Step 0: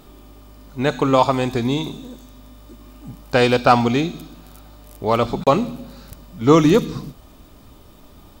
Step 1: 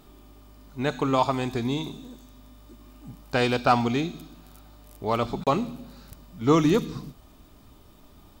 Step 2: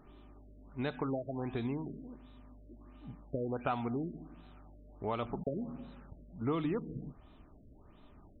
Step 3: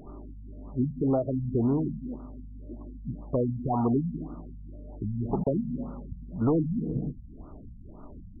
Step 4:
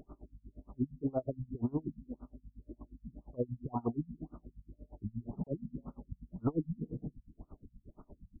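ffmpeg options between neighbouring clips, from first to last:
-af "equalizer=f=520:w=7.6:g=-6,volume=0.473"
-af "acompressor=threshold=0.0398:ratio=3,afftfilt=real='re*lt(b*sr/1024,630*pow(4200/630,0.5+0.5*sin(2*PI*1.4*pts/sr)))':imag='im*lt(b*sr/1024,630*pow(4200/630,0.5+0.5*sin(2*PI*1.4*pts/sr)))':win_size=1024:overlap=0.75,volume=0.562"
-af "aeval=exprs='0.112*sin(PI/2*2.82*val(0)/0.112)':c=same,afftfilt=real='re*lt(b*sr/1024,220*pow(1500/220,0.5+0.5*sin(2*PI*1.9*pts/sr)))':imag='im*lt(b*sr/1024,220*pow(1500/220,0.5+0.5*sin(2*PI*1.9*pts/sr)))':win_size=1024:overlap=0.75"
-af "aeval=exprs='val(0)*pow(10,-29*(0.5-0.5*cos(2*PI*8.5*n/s))/20)':c=same,volume=0.668"

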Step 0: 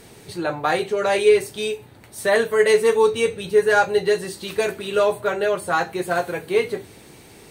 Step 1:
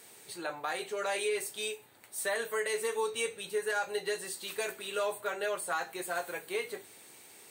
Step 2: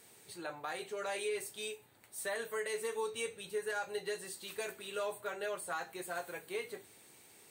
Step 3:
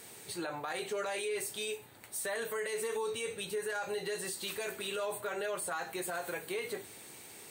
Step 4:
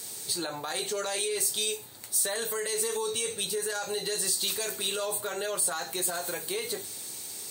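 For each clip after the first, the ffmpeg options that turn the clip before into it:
-af "highpass=f=890:p=1,alimiter=limit=0.158:level=0:latency=1:release=104,aexciter=amount=1.9:drive=4.3:freq=7200,volume=0.447"
-af "lowshelf=f=170:g=9.5,volume=0.501"
-af "alimiter=level_in=4.47:limit=0.0631:level=0:latency=1:release=54,volume=0.224,volume=2.82"
-af "highshelf=f=3300:t=q:w=1.5:g=9,volume=1.5"

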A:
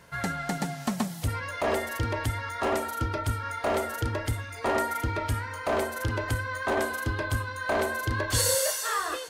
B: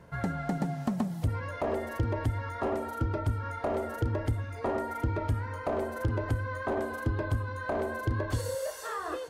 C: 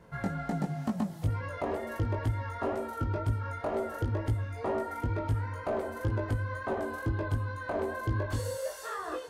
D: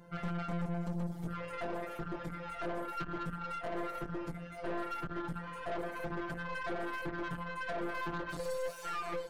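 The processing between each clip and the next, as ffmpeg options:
-af "acompressor=threshold=0.0398:ratio=6,tiltshelf=f=1300:g=8.5,volume=0.631"
-af "flanger=delay=18:depth=2.6:speed=2.1,volume=1.19"
-af "afftfilt=real='hypot(re,im)*cos(PI*b)':imag='0':win_size=1024:overlap=0.75,aeval=exprs='(tanh(112*val(0)+0.65)-tanh(0.65))/112':c=same,volume=2.24"

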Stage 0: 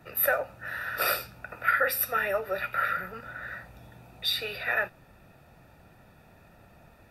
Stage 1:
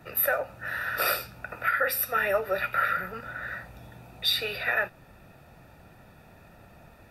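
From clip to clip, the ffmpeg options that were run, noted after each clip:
-af "alimiter=limit=0.141:level=0:latency=1:release=291,volume=1.41"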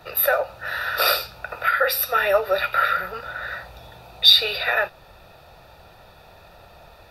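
-af "equalizer=f=125:t=o:w=1:g=-5,equalizer=f=250:t=o:w=1:g=-12,equalizer=f=500:t=o:w=1:g=3,equalizer=f=1000:t=o:w=1:g=3,equalizer=f=2000:t=o:w=1:g=-5,equalizer=f=4000:t=o:w=1:g=10,equalizer=f=8000:t=o:w=1:g=-5,volume=2"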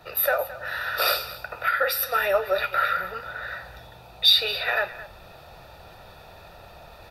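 -af "areverse,acompressor=mode=upward:threshold=0.0158:ratio=2.5,areverse,asoftclip=type=tanh:threshold=0.631,aecho=1:1:217:0.158,volume=0.708"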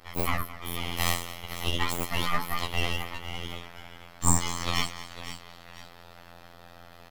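-filter_complex "[0:a]asplit=4[s0][s1][s2][s3];[s1]adelay=500,afreqshift=48,volume=0.251[s4];[s2]adelay=1000,afreqshift=96,volume=0.0804[s5];[s3]adelay=1500,afreqshift=144,volume=0.0257[s6];[s0][s4][s5][s6]amix=inputs=4:normalize=0,afftfilt=real='hypot(re,im)*cos(PI*b)':imag='0':win_size=2048:overlap=0.75,aeval=exprs='abs(val(0))':c=same"

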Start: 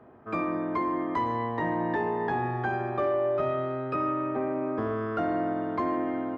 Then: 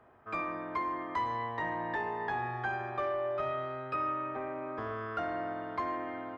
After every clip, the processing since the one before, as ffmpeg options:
-af "equalizer=f=240:w=0.45:g=-13.5"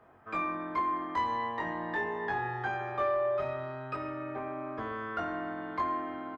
-filter_complex "[0:a]asplit=2[s0][s1];[s1]adelay=22,volume=0.708[s2];[s0][s2]amix=inputs=2:normalize=0"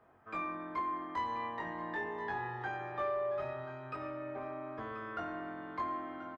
-af "aecho=1:1:1032:0.211,volume=0.531"

